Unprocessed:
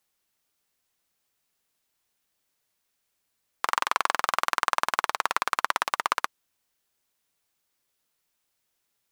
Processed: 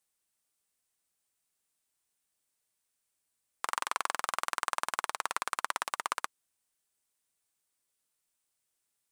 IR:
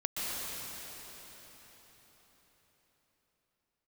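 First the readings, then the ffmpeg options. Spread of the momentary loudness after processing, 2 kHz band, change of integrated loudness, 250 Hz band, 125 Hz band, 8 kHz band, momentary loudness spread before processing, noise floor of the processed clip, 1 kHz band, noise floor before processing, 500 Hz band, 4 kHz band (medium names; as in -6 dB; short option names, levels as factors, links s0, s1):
3 LU, -8.0 dB, -7.5 dB, -8.0 dB, no reading, -2.0 dB, 3 LU, -82 dBFS, -8.0 dB, -78 dBFS, -8.0 dB, -7.0 dB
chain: -af "equalizer=f=8800:t=o:w=0.64:g=9.5,volume=0.398"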